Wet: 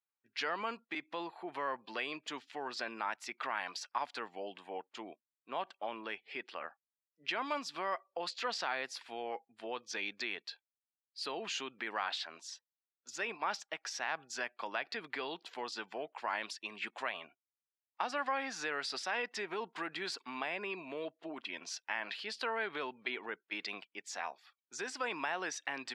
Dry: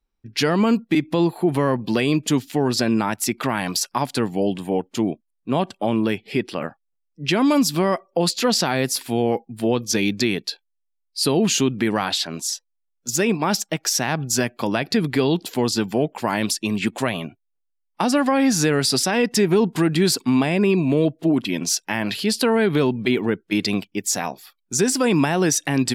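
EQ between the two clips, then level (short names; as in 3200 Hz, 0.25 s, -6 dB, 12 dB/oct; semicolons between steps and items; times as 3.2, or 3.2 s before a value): HPF 1100 Hz 12 dB/oct; tape spacing loss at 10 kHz 29 dB; -4.5 dB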